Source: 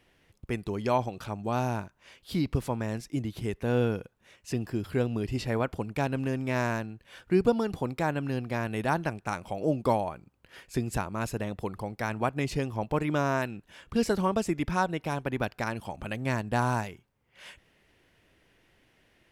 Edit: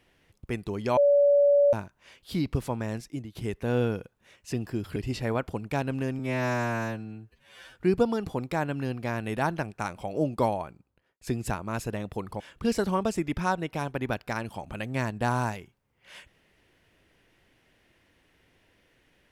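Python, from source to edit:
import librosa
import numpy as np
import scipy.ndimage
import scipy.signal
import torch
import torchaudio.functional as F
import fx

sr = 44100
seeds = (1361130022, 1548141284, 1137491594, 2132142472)

y = fx.studio_fade_out(x, sr, start_s=10.14, length_s=0.54)
y = fx.edit(y, sr, fx.bleep(start_s=0.97, length_s=0.76, hz=572.0, db=-16.5),
    fx.fade_out_to(start_s=2.98, length_s=0.37, floor_db=-12.5),
    fx.cut(start_s=4.96, length_s=0.25),
    fx.stretch_span(start_s=6.44, length_s=0.78, factor=2.0),
    fx.cut(start_s=11.87, length_s=1.84), tone=tone)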